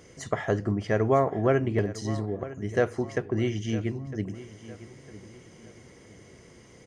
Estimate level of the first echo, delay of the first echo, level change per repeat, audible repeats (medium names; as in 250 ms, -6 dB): -16.0 dB, 956 ms, -8.5 dB, 3